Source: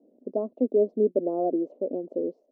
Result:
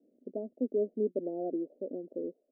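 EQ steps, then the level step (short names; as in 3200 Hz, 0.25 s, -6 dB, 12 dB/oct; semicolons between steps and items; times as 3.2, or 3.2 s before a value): running mean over 40 samples; -6.0 dB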